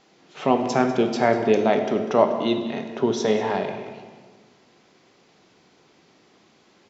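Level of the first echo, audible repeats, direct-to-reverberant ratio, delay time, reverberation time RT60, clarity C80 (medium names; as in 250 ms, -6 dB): -15.5 dB, 1, 5.0 dB, 196 ms, 1.5 s, 8.0 dB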